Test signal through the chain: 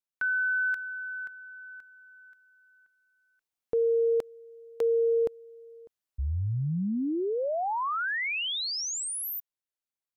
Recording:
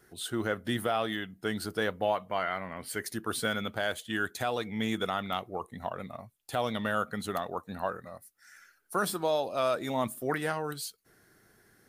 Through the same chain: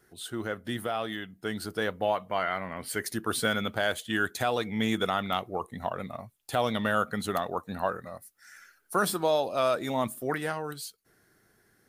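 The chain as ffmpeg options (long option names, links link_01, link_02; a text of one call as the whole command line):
ffmpeg -i in.wav -af "dynaudnorm=framelen=240:gausssize=17:maxgain=6dB,volume=-2.5dB" out.wav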